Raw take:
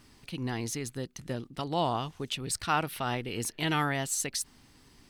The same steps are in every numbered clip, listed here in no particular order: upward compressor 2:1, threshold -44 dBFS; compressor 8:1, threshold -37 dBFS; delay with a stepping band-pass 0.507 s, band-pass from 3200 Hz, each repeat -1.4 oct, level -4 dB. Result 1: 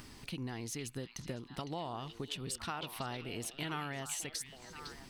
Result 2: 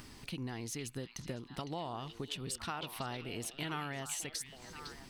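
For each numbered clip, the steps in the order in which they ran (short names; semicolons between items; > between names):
upward compressor > compressor > delay with a stepping band-pass; compressor > upward compressor > delay with a stepping band-pass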